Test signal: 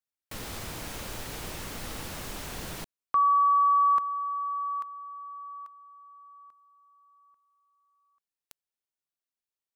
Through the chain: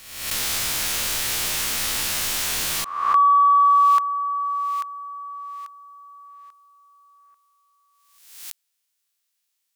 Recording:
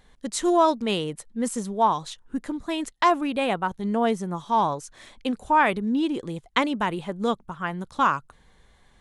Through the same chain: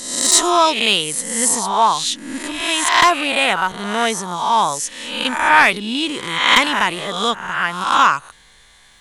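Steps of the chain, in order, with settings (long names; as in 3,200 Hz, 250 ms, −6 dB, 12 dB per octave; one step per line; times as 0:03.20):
peak hold with a rise ahead of every peak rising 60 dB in 0.88 s
tilt shelving filter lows −9 dB, about 1,200 Hz
in parallel at −6 dB: sine wavefolder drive 9 dB, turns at 1.5 dBFS
on the sum: level −3 dB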